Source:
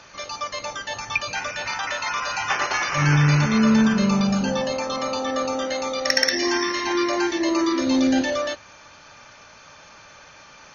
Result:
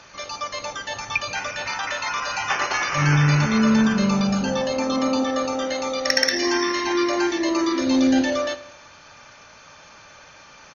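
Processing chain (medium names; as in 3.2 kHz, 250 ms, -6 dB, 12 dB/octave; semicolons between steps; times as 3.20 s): 4.76–5.24 s: peaking EQ 260 Hz +10.5 dB; feedback delay 80 ms, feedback 59%, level -18 dB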